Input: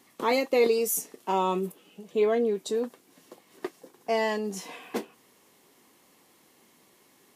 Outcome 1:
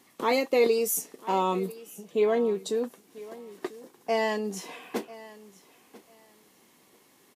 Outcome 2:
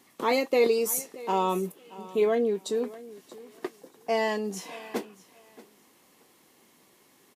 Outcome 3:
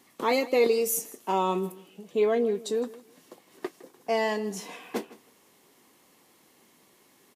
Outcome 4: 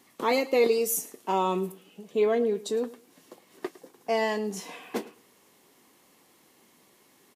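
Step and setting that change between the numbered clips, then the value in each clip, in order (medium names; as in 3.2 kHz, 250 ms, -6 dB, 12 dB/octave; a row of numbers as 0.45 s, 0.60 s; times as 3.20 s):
feedback delay, time: 994 ms, 629 ms, 160 ms, 108 ms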